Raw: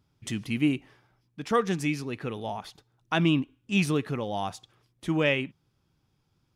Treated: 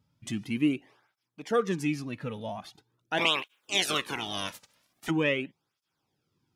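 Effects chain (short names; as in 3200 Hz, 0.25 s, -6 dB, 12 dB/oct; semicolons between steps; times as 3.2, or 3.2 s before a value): 3.17–5.09 spectral limiter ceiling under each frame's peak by 30 dB; tape flanging out of phase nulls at 0.43 Hz, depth 2.9 ms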